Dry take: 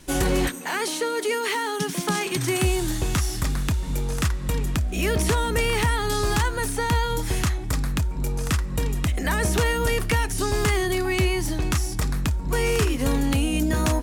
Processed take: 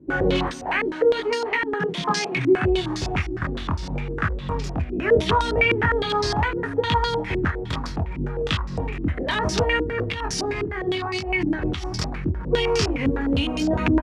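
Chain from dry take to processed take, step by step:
high-pass filter 58 Hz 24 dB per octave
0:09.81–0:11.98: compressor whose output falls as the input rises −27 dBFS, ratio −1
chorus effect 0.71 Hz, delay 19 ms, depth 5.8 ms
repeating echo 418 ms, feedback 53%, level −18.5 dB
low-pass on a step sequencer 9.8 Hz 340–5,100 Hz
level +2 dB

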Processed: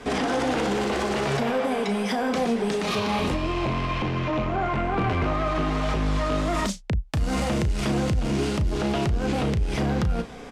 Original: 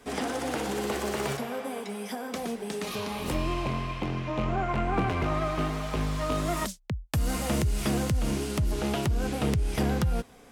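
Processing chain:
Bessel low-pass filter 5,000 Hz, order 2
in parallel at 0 dB: compressor whose output falls as the input rises −31 dBFS, ratio −0.5
on the sum: brickwall limiter −20 dBFS, peak gain reduction 7 dB
soft clipping −22.5 dBFS, distortion −19 dB
double-tracking delay 35 ms −10 dB
level +5 dB

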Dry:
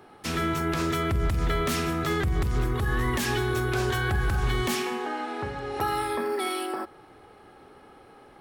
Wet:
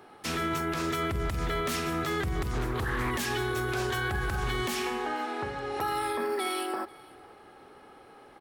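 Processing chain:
low-shelf EQ 210 Hz −6.5 dB
brickwall limiter −22 dBFS, peak gain reduction 5 dB
single-tap delay 489 ms −23.5 dB
0:02.53–0:03.11: highs frequency-modulated by the lows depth 0.34 ms

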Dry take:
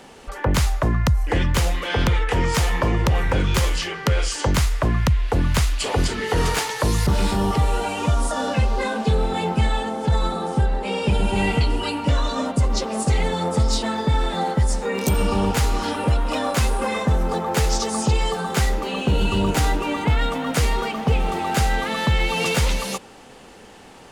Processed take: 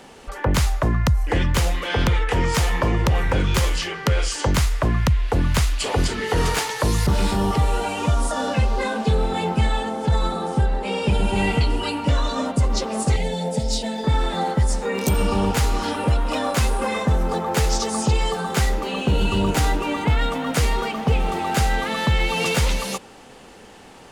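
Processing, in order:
0:13.16–0:14.04: phaser with its sweep stopped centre 320 Hz, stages 6

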